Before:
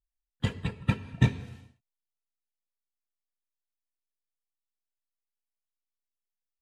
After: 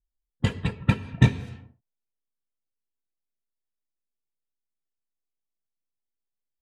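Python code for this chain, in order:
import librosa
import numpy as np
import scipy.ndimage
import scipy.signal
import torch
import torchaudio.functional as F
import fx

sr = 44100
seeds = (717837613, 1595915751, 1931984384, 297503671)

y = fx.env_lowpass(x, sr, base_hz=450.0, full_db=-26.5)
y = y * 10.0 ** (5.0 / 20.0)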